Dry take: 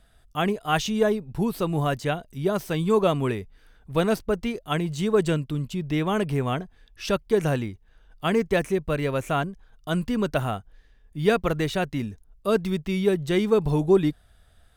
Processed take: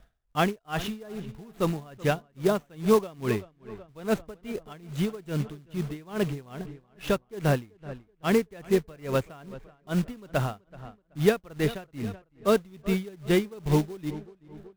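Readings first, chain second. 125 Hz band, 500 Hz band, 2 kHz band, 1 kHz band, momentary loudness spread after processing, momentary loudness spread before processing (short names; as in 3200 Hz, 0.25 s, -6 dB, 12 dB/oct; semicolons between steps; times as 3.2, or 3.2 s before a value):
-3.5 dB, -4.0 dB, -4.0 dB, -5.0 dB, 17 LU, 9 LU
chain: median filter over 9 samples; short-mantissa float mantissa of 2-bit; on a send: darkening echo 0.379 s, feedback 50%, low-pass 3200 Hz, level -16 dB; on the sum: dB-linear tremolo 2.4 Hz, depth 26 dB; gain +2 dB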